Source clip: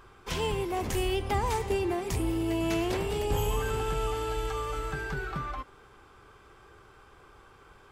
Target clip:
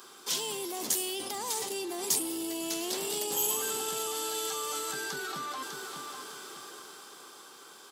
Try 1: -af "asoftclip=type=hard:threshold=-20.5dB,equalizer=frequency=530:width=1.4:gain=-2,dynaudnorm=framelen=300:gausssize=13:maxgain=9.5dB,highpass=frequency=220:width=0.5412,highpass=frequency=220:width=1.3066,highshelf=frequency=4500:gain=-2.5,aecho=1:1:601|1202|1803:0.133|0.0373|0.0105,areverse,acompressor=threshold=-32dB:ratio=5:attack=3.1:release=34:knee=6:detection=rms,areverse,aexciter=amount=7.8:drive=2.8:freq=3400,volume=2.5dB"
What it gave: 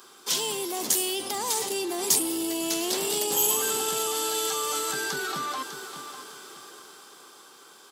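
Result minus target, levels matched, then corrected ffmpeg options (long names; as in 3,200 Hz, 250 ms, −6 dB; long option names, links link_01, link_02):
downward compressor: peak gain reduction −6 dB
-af "asoftclip=type=hard:threshold=-20.5dB,equalizer=frequency=530:width=1.4:gain=-2,dynaudnorm=framelen=300:gausssize=13:maxgain=9.5dB,highpass=frequency=220:width=0.5412,highpass=frequency=220:width=1.3066,highshelf=frequency=4500:gain=-2.5,aecho=1:1:601|1202|1803:0.133|0.0373|0.0105,areverse,acompressor=threshold=-39.5dB:ratio=5:attack=3.1:release=34:knee=6:detection=rms,areverse,aexciter=amount=7.8:drive=2.8:freq=3400,volume=2.5dB"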